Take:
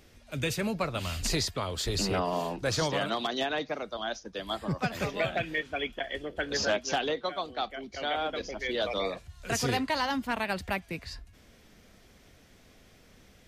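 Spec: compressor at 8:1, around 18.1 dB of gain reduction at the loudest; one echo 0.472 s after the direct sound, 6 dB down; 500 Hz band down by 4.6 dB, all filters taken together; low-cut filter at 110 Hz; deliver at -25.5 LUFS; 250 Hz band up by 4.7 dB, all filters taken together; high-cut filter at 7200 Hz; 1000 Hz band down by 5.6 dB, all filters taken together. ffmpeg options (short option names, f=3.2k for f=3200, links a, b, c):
-af "highpass=110,lowpass=7.2k,equalizer=f=250:t=o:g=8,equalizer=f=500:t=o:g=-6,equalizer=f=1k:t=o:g=-6,acompressor=threshold=-43dB:ratio=8,aecho=1:1:472:0.501,volume=19.5dB"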